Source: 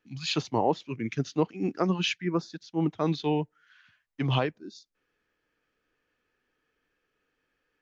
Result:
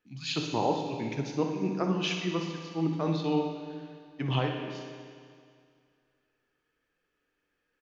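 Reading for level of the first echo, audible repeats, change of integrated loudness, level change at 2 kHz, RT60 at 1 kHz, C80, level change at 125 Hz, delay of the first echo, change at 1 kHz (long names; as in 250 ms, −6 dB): −9.5 dB, 1, −2.0 dB, −2.0 dB, 2.2 s, 5.5 dB, −1.5 dB, 62 ms, −1.5 dB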